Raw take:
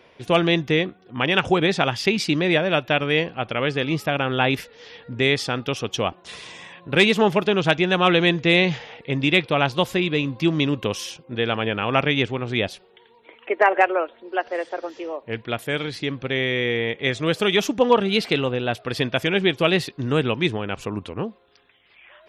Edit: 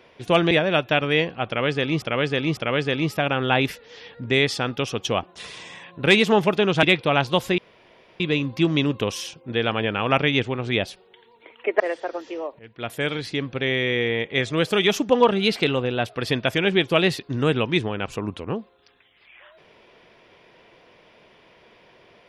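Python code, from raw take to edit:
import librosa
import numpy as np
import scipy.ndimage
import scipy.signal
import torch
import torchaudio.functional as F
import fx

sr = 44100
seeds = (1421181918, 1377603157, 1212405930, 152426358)

y = fx.edit(x, sr, fx.cut(start_s=0.51, length_s=1.99),
    fx.repeat(start_s=3.46, length_s=0.55, count=3),
    fx.cut(start_s=7.72, length_s=1.56),
    fx.insert_room_tone(at_s=10.03, length_s=0.62),
    fx.cut(start_s=13.63, length_s=0.86),
    fx.fade_in_from(start_s=15.28, length_s=0.34, curve='qua', floor_db=-18.0), tone=tone)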